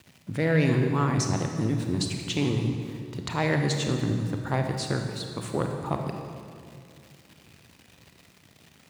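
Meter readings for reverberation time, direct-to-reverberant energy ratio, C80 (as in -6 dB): 2.3 s, 3.5 dB, 5.5 dB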